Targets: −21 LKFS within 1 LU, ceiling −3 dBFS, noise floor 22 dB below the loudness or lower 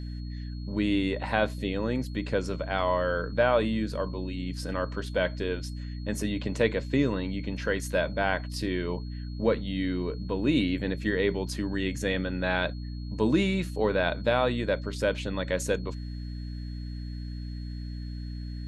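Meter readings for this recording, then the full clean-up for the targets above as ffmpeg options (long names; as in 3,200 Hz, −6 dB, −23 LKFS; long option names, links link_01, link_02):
mains hum 60 Hz; hum harmonics up to 300 Hz; level of the hum −33 dBFS; interfering tone 4,300 Hz; level of the tone −53 dBFS; integrated loudness −29.5 LKFS; sample peak −9.0 dBFS; target loudness −21.0 LKFS
→ -af "bandreject=frequency=60:width_type=h:width=6,bandreject=frequency=120:width_type=h:width=6,bandreject=frequency=180:width_type=h:width=6,bandreject=frequency=240:width_type=h:width=6,bandreject=frequency=300:width_type=h:width=6"
-af "bandreject=frequency=4300:width=30"
-af "volume=8.5dB,alimiter=limit=-3dB:level=0:latency=1"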